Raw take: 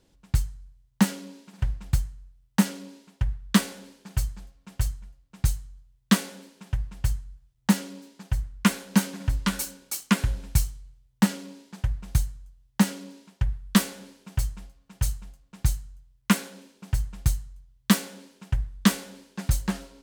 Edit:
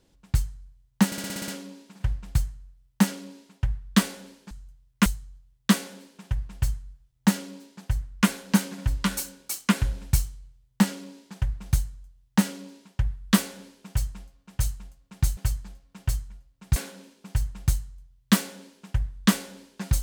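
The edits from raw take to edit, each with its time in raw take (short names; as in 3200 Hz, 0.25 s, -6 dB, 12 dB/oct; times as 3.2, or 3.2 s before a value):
1.06 stutter 0.06 s, 8 plays
4.09–5.48 swap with 15.79–16.34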